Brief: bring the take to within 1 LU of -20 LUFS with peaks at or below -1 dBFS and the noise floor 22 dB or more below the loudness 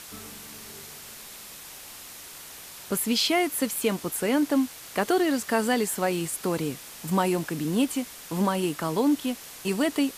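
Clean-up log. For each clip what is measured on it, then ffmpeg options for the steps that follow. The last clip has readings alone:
noise floor -44 dBFS; noise floor target -49 dBFS; loudness -26.5 LUFS; peak -11.0 dBFS; loudness target -20.0 LUFS
-> -af "afftdn=nr=6:nf=-44"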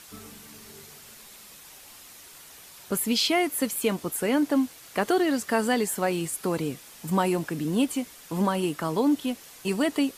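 noise floor -48 dBFS; noise floor target -49 dBFS
-> -af "afftdn=nr=6:nf=-48"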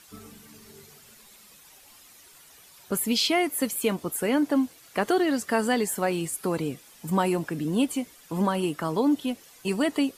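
noise floor -53 dBFS; loudness -26.5 LUFS; peak -11.0 dBFS; loudness target -20.0 LUFS
-> -af "volume=6.5dB"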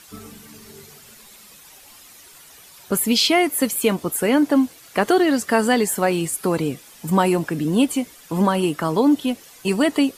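loudness -20.0 LUFS; peak -4.5 dBFS; noise floor -47 dBFS

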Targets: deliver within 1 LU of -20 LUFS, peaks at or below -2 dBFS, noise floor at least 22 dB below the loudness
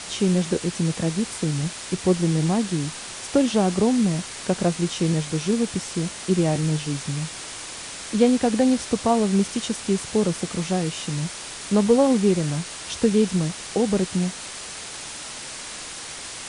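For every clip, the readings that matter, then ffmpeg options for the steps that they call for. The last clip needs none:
noise floor -36 dBFS; noise floor target -46 dBFS; loudness -23.5 LUFS; peak -6.5 dBFS; loudness target -20.0 LUFS
-> -af "afftdn=nr=10:nf=-36"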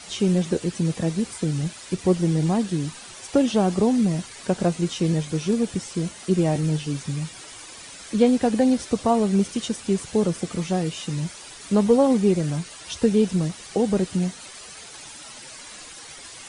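noise floor -42 dBFS; noise floor target -46 dBFS
-> -af "afftdn=nr=6:nf=-42"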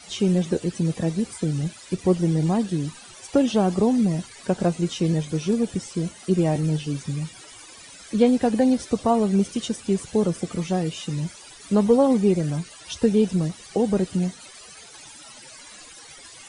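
noise floor -45 dBFS; noise floor target -46 dBFS
-> -af "afftdn=nr=6:nf=-45"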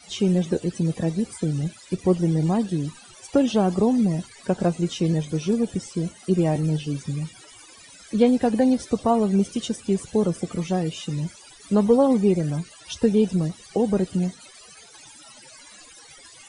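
noise floor -48 dBFS; loudness -23.5 LUFS; peak -7.0 dBFS; loudness target -20.0 LUFS
-> -af "volume=3.5dB"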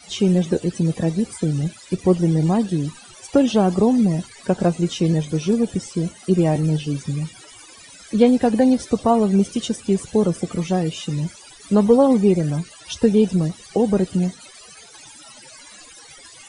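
loudness -20.0 LUFS; peak -3.5 dBFS; noise floor -44 dBFS

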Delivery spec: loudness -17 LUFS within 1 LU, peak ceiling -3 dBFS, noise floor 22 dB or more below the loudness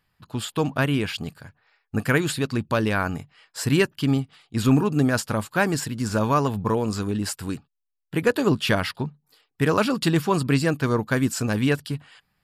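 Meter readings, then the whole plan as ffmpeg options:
loudness -24.0 LUFS; peak -6.5 dBFS; loudness target -17.0 LUFS
-> -af "volume=7dB,alimiter=limit=-3dB:level=0:latency=1"

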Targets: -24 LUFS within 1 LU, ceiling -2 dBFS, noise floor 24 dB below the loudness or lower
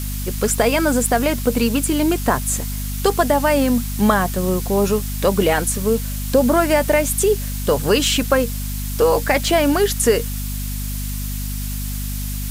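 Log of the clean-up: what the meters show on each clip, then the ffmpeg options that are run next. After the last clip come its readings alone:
hum 50 Hz; harmonics up to 250 Hz; hum level -23 dBFS; noise floor -25 dBFS; noise floor target -43 dBFS; loudness -19.0 LUFS; peak -2.0 dBFS; loudness target -24.0 LUFS
-> -af "bandreject=f=50:t=h:w=4,bandreject=f=100:t=h:w=4,bandreject=f=150:t=h:w=4,bandreject=f=200:t=h:w=4,bandreject=f=250:t=h:w=4"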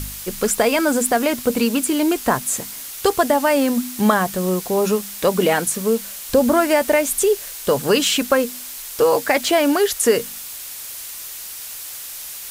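hum none; noise floor -33 dBFS; noise floor target -43 dBFS
-> -af "afftdn=nr=10:nf=-33"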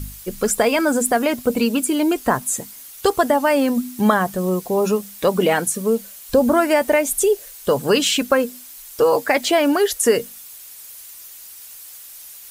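noise floor -40 dBFS; noise floor target -43 dBFS
-> -af "afftdn=nr=6:nf=-40"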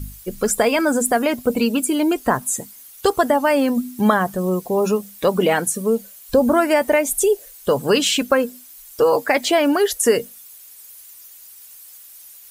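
noise floor -43 dBFS; loudness -19.0 LUFS; peak -3.0 dBFS; loudness target -24.0 LUFS
-> -af "volume=-5dB"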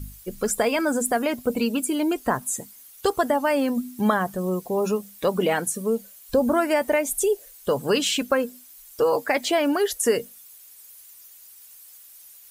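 loudness -24.0 LUFS; peak -8.0 dBFS; noise floor -48 dBFS

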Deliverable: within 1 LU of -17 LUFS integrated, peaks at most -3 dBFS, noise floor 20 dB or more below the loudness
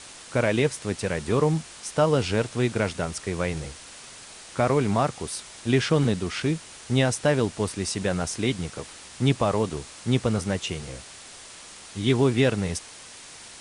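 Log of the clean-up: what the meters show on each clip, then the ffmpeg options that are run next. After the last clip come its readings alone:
noise floor -45 dBFS; noise floor target -46 dBFS; loudness -25.5 LUFS; peak -9.0 dBFS; loudness target -17.0 LUFS
-> -af "afftdn=nr=6:nf=-45"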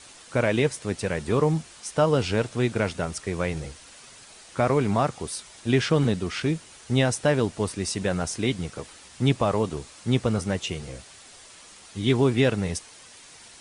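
noise floor -49 dBFS; loudness -25.5 LUFS; peak -9.0 dBFS; loudness target -17.0 LUFS
-> -af "volume=8.5dB,alimiter=limit=-3dB:level=0:latency=1"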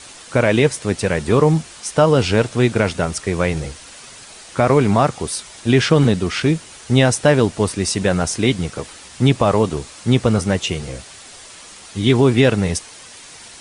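loudness -17.5 LUFS; peak -3.0 dBFS; noise floor -40 dBFS

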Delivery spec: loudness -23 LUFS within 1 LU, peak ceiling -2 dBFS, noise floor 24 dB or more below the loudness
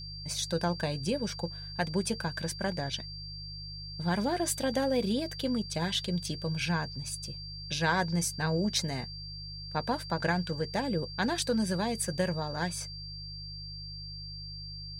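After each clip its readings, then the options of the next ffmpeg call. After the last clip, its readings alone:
hum 50 Hz; harmonics up to 150 Hz; hum level -43 dBFS; steady tone 4700 Hz; tone level -42 dBFS; loudness -32.5 LUFS; peak -13.5 dBFS; loudness target -23.0 LUFS
-> -af "bandreject=f=50:t=h:w=4,bandreject=f=100:t=h:w=4,bandreject=f=150:t=h:w=4"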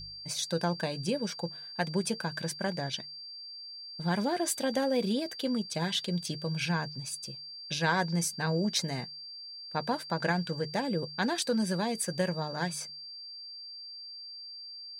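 hum none; steady tone 4700 Hz; tone level -42 dBFS
-> -af "bandreject=f=4.7k:w=30"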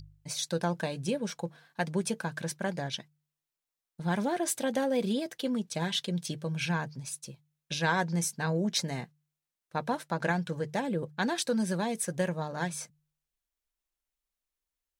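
steady tone none; loudness -32.0 LUFS; peak -13.5 dBFS; loudness target -23.0 LUFS
-> -af "volume=9dB"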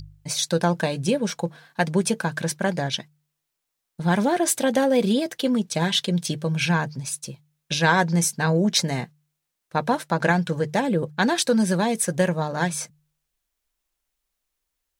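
loudness -23.0 LUFS; peak -4.5 dBFS; noise floor -81 dBFS

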